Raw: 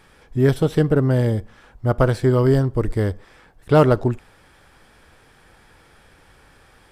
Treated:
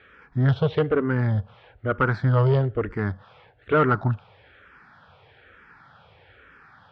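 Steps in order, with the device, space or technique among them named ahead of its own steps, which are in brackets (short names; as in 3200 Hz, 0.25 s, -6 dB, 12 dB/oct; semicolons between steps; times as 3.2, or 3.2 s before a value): barber-pole phaser into a guitar amplifier (endless phaser -1.1 Hz; soft clip -13.5 dBFS, distortion -16 dB; speaker cabinet 91–3600 Hz, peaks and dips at 99 Hz +4 dB, 230 Hz -5 dB, 330 Hz -8 dB, 1400 Hz +6 dB); gain +2.5 dB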